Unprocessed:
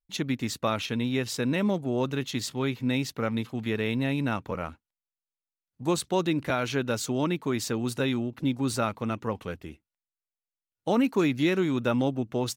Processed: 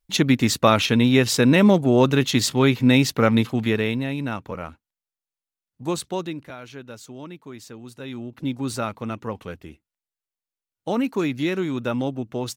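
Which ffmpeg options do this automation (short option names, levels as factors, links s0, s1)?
-af "volume=13.3,afade=t=out:st=3.41:d=0.64:silence=0.298538,afade=t=out:st=6.03:d=0.46:silence=0.266073,afade=t=in:st=7.99:d=0.5:silence=0.266073"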